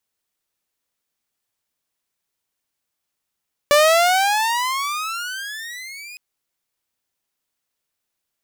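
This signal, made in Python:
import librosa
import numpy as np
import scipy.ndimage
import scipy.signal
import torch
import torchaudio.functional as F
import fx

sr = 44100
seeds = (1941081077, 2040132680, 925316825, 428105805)

y = fx.riser_tone(sr, length_s=2.46, level_db=-7.5, wave='saw', hz=576.0, rise_st=25.5, swell_db=-24.5)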